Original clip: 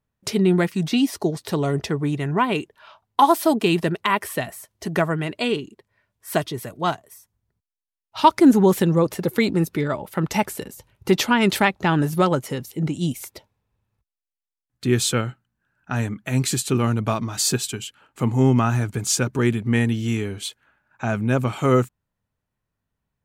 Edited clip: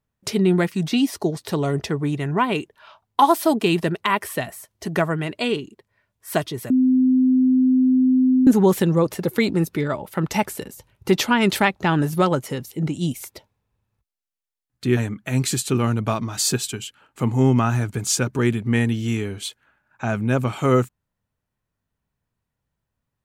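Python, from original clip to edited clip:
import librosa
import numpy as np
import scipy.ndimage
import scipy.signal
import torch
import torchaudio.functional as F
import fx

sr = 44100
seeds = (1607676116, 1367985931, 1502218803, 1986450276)

y = fx.edit(x, sr, fx.bleep(start_s=6.7, length_s=1.77, hz=257.0, db=-13.0),
    fx.cut(start_s=14.97, length_s=1.0), tone=tone)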